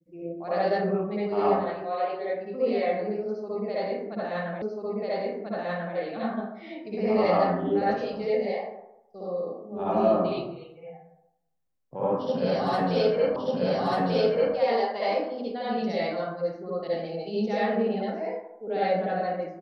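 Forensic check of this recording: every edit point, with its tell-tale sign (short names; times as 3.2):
4.62 repeat of the last 1.34 s
13.36 repeat of the last 1.19 s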